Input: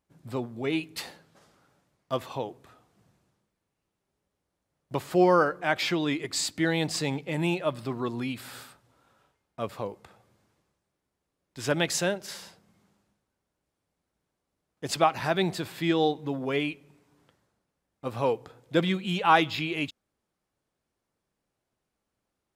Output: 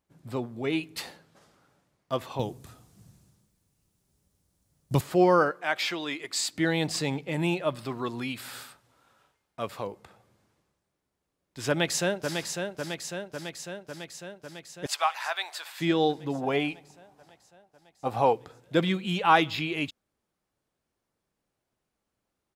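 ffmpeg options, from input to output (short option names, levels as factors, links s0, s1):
-filter_complex "[0:a]asettb=1/sr,asplit=3[s0][s1][s2];[s0]atrim=end=2.394[s3];[s1]atrim=start=2.39:end=5.01,asetpts=PTS-STARTPTS,afade=t=in:d=0.004:c=qsin,afade=t=out:st=2.616:d=0.004:c=qsin,bass=f=250:g=13,treble=f=4000:g=14[s4];[s2]atrim=start=5.006[s5];[s3][s4]acrossfade=d=0.004:c1=hsin:c2=qsin[s6];[s6][s5]acrossfade=d=0.004:c1=qsin:c2=hsin,asettb=1/sr,asplit=3[s7][s8][s9];[s7]atrim=end=5.514[s10];[s8]atrim=start=5.51:end=6.53,asetpts=PTS-STARTPTS,afade=t=in:d=0.004:c=qsin,afade=t=out:st=1.016:d=0.004:c=qsin,highpass=f=710:p=1[s11];[s9]atrim=start=6.526[s12];[s10][s11]acrossfade=d=0.004:c1=hsin:c2=qsin[s13];[s13][s12]acrossfade=d=0.004:c1=qsin:c2=hsin,asettb=1/sr,asplit=3[s14][s15][s16];[s14]atrim=end=7.754[s17];[s15]atrim=start=7.75:end=9.87,asetpts=PTS-STARTPTS,afade=t=in:d=0.004:c=qsin,afade=t=out:st=2.116:d=0.004:c=qsin,tiltshelf=f=740:g=-3[s18];[s16]atrim=start=9.866[s19];[s17][s18]acrossfade=d=0.004:c1=hsin:c2=qsin[s20];[s20][s19]acrossfade=d=0.004:c1=qsin:c2=hsin,asplit=2[s21][s22];[s22]afade=t=in:st=11.68:d=0.01,afade=t=out:st=12.39:d=0.01,aecho=0:1:550|1100|1650|2200|2750|3300|3850|4400|4950|5500|6050|6600:0.530884|0.371619|0.260133|0.182093|0.127465|0.0892257|0.062458|0.0437206|0.0306044|0.0214231|0.0149962|0.0104973[s23];[s21][s23]amix=inputs=2:normalize=0,asettb=1/sr,asplit=3[s24][s25][s26];[s24]atrim=end=14.864[s27];[s25]atrim=start=14.86:end=15.8,asetpts=PTS-STARTPTS,afade=t=in:d=0.004:c=qsin,afade=t=out:st=0.936:d=0.004:c=qsin,highpass=f=820:w=0.5412,highpass=f=820:w=1.3066[s28];[s26]atrim=start=15.796[s29];[s27][s28]acrossfade=d=0.004:c1=hsin:c2=qsin[s30];[s30][s29]acrossfade=d=0.004:c1=qsin:c2=hsin,asettb=1/sr,asplit=3[s31][s32][s33];[s31]atrim=end=16.354[s34];[s32]atrim=start=16.35:end=18.33,asetpts=PTS-STARTPTS,afade=t=in:d=0.004:c=qsin,afade=t=out:st=1.976:d=0.004:c=qsin,equalizer=f=770:t=o:w=0.39:g=14.5[s35];[s33]atrim=start=18.326[s36];[s34][s35]acrossfade=d=0.004:c1=hsin:c2=qsin[s37];[s37][s36]acrossfade=d=0.004:c1=qsin:c2=hsin"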